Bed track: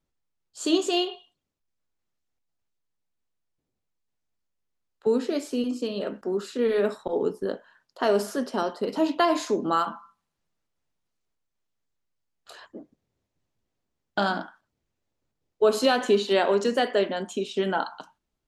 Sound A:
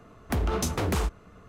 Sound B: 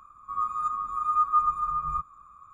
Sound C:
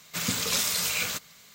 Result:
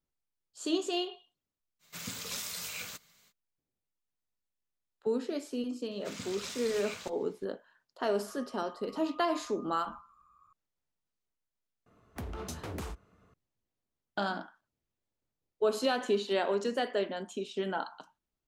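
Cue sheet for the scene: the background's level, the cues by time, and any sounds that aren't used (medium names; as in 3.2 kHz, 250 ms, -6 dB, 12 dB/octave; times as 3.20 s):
bed track -8 dB
1.79 s: add C -12 dB, fades 0.05 s
5.91 s: add C -13 dB + distance through air 50 m
8.00 s: add B -12.5 dB + compression 2.5:1, threshold -45 dBFS
11.86 s: add A -12.5 dB + high-pass 51 Hz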